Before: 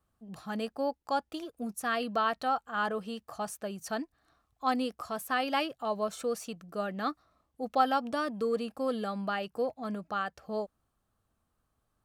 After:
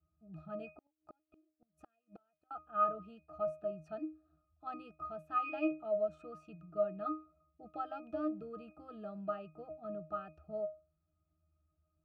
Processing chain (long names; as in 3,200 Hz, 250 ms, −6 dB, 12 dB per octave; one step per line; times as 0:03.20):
resonances in every octave D#, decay 0.29 s
0:00.75–0:02.51: gate with flip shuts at −52 dBFS, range −36 dB
level +9.5 dB